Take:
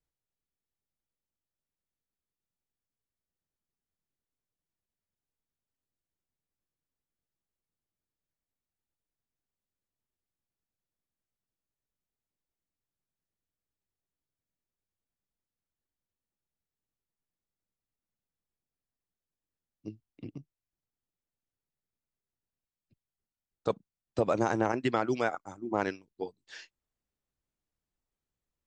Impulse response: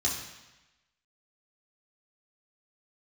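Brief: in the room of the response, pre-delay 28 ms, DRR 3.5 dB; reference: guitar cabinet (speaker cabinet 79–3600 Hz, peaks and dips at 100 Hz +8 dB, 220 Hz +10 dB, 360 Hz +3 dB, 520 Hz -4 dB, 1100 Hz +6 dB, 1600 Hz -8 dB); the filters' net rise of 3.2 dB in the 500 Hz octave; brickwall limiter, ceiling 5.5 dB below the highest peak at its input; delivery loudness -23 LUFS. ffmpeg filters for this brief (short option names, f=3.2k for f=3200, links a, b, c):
-filter_complex "[0:a]equalizer=f=500:t=o:g=4.5,alimiter=limit=-17dB:level=0:latency=1,asplit=2[a][b];[1:a]atrim=start_sample=2205,adelay=28[c];[b][c]afir=irnorm=-1:irlink=0,volume=-10.5dB[d];[a][d]amix=inputs=2:normalize=0,highpass=79,equalizer=f=100:t=q:w=4:g=8,equalizer=f=220:t=q:w=4:g=10,equalizer=f=360:t=q:w=4:g=3,equalizer=f=520:t=q:w=4:g=-4,equalizer=f=1.1k:t=q:w=4:g=6,equalizer=f=1.6k:t=q:w=4:g=-8,lowpass=f=3.6k:w=0.5412,lowpass=f=3.6k:w=1.3066,volume=6.5dB"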